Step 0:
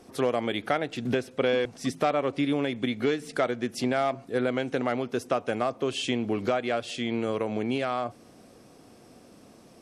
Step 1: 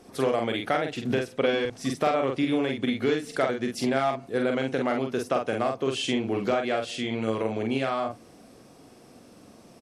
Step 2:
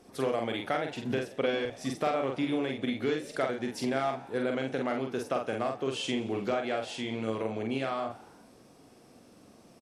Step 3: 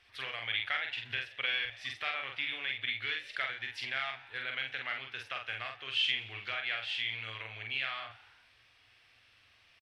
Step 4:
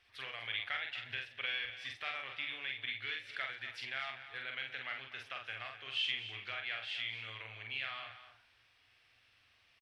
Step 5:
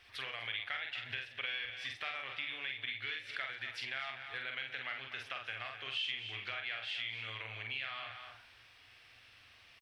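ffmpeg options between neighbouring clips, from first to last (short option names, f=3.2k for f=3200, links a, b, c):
-filter_complex "[0:a]asplit=2[a][b];[b]adelay=45,volume=-4dB[c];[a][c]amix=inputs=2:normalize=0"
-filter_complex "[0:a]asplit=6[a][b][c][d][e][f];[b]adelay=86,afreqshift=67,volume=-18.5dB[g];[c]adelay=172,afreqshift=134,volume=-22.9dB[h];[d]adelay=258,afreqshift=201,volume=-27.4dB[i];[e]adelay=344,afreqshift=268,volume=-31.8dB[j];[f]adelay=430,afreqshift=335,volume=-36.2dB[k];[a][g][h][i][j][k]amix=inputs=6:normalize=0,volume=-5dB"
-af "firequalizer=gain_entry='entry(110,0);entry(160,-24);entry(750,-8);entry(1800,13);entry(3000,15);entry(6800,-9)':delay=0.05:min_phase=1,volume=-7dB"
-af "aecho=1:1:248:0.237,volume=-5dB"
-af "acompressor=threshold=-52dB:ratio=2,volume=8.5dB"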